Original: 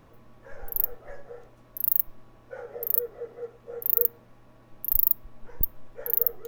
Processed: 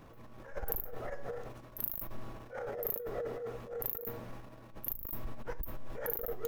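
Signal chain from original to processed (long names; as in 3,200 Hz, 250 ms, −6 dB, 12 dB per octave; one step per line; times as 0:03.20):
transient designer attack −10 dB, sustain +9 dB
compressor whose output falls as the input rises −33 dBFS, ratio −1
level −3 dB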